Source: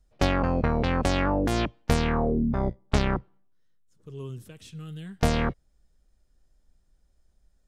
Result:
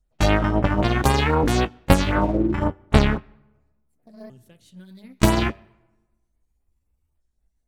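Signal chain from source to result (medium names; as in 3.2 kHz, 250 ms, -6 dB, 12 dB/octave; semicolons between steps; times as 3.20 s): sawtooth pitch modulation +8.5 st, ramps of 1433 ms; band-stop 5.1 kHz, Q 20; de-hum 96.85 Hz, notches 39; in parallel at -4 dB: crossover distortion -41 dBFS; on the sum: LFO notch sine 3.8 Hz 470–6600 Hz; on a send at -24 dB: reverberation RT60 1.2 s, pre-delay 109 ms; on the sum: upward expansion 1.5:1, over -38 dBFS; trim +6 dB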